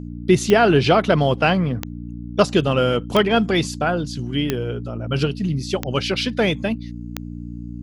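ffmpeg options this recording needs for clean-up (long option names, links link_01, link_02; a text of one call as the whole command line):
ffmpeg -i in.wav -af "adeclick=threshold=4,bandreject=frequency=58.9:width_type=h:width=4,bandreject=frequency=117.8:width_type=h:width=4,bandreject=frequency=176.7:width_type=h:width=4,bandreject=frequency=235.6:width_type=h:width=4,bandreject=frequency=294.5:width_type=h:width=4" out.wav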